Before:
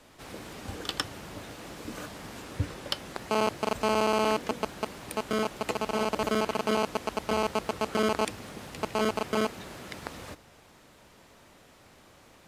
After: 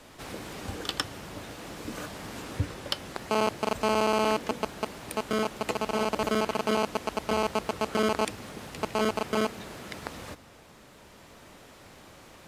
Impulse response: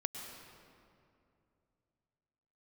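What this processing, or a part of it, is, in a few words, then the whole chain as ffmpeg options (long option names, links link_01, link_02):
ducked reverb: -filter_complex "[0:a]asplit=3[link_01][link_02][link_03];[1:a]atrim=start_sample=2205[link_04];[link_02][link_04]afir=irnorm=-1:irlink=0[link_05];[link_03]apad=whole_len=550331[link_06];[link_05][link_06]sidechaincompress=threshold=-42dB:ratio=8:attack=16:release=1350,volume=-1.5dB[link_07];[link_01][link_07]amix=inputs=2:normalize=0"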